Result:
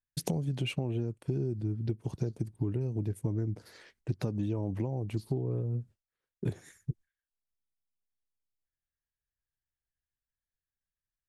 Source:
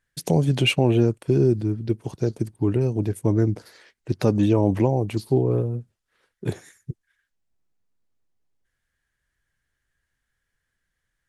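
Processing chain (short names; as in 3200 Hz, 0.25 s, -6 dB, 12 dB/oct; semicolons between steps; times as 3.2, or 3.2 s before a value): gate with hold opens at -52 dBFS; low shelf 240 Hz +9 dB; compressor 12:1, threshold -25 dBFS, peak gain reduction 17 dB; gain -3.5 dB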